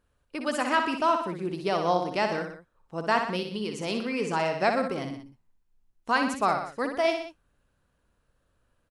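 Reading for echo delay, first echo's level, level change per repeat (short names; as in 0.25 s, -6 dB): 61 ms, -6.5 dB, -5.0 dB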